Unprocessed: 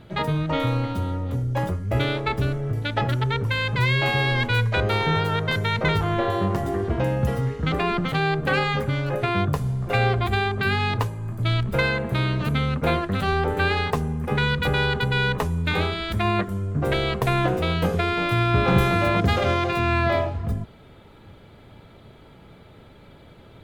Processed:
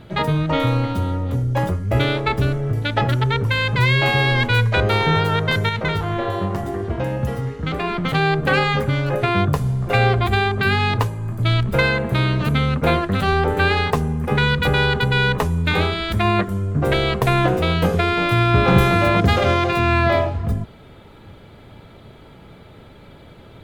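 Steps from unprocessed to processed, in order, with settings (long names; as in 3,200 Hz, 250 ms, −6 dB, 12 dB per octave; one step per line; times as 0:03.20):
0:05.69–0:08.05: flanger 1.9 Hz, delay 7.9 ms, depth 3.7 ms, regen +83%
level +4.5 dB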